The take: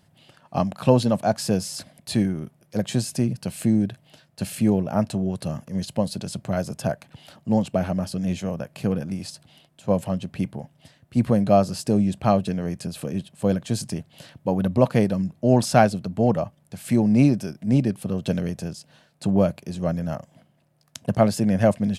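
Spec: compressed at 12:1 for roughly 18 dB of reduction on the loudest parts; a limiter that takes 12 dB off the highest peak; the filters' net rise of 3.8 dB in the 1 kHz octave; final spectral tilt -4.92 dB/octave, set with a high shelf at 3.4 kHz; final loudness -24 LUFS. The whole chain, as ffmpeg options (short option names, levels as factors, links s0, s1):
-af "equalizer=f=1000:t=o:g=5.5,highshelf=f=3400:g=5,acompressor=threshold=0.0447:ratio=12,volume=3.76,alimiter=limit=0.224:level=0:latency=1"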